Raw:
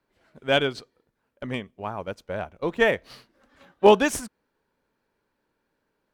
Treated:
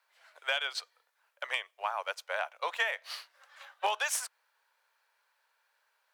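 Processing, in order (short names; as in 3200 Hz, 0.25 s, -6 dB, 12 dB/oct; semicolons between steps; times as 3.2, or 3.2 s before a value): Bessel high-pass 1100 Hz, order 8; in parallel at +1.5 dB: limiter -21 dBFS, peak gain reduction 10.5 dB; on the sum: compressor 12:1, threshold -27 dBFS, peak gain reduction 12 dB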